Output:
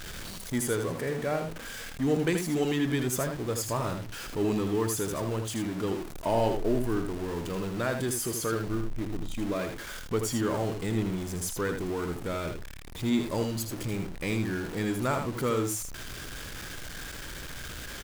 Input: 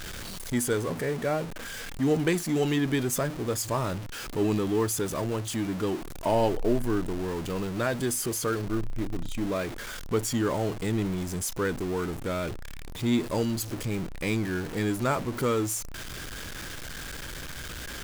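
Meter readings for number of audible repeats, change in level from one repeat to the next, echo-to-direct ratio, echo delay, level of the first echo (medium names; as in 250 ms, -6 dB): 1, no regular repeats, -6.5 dB, 80 ms, -6.5 dB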